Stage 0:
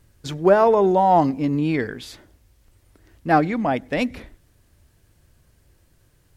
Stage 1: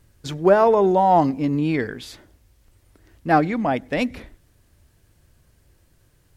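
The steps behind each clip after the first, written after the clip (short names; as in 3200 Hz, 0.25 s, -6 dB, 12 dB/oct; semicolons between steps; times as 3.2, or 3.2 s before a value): nothing audible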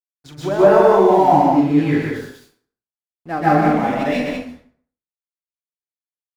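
crossover distortion -38.5 dBFS; on a send: loudspeakers at several distances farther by 14 m -9 dB, 42 m -5 dB, 67 m -5 dB; on the sum: plate-style reverb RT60 0.53 s, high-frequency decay 0.7×, pre-delay 0.12 s, DRR -9 dB; gain -8 dB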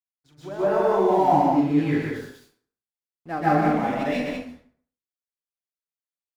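opening faded in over 1.31 s; gain -5.5 dB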